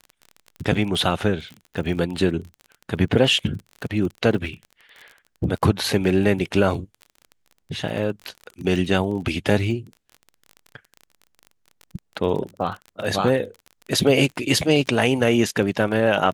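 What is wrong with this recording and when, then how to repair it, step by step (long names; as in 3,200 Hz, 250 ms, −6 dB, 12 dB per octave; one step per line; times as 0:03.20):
surface crackle 30 per second −31 dBFS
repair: click removal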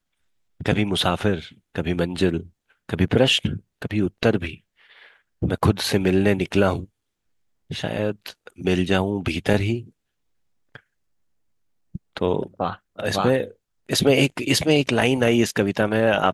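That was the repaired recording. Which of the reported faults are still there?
none of them is left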